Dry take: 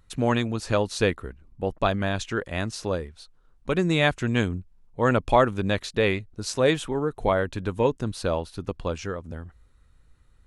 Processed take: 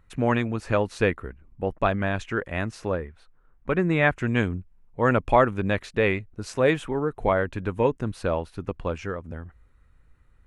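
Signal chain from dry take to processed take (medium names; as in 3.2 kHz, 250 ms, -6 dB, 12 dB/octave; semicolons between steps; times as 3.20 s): resonant high shelf 3 kHz -8 dB, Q 1.5, from 2.92 s -14 dB, from 4.16 s -7 dB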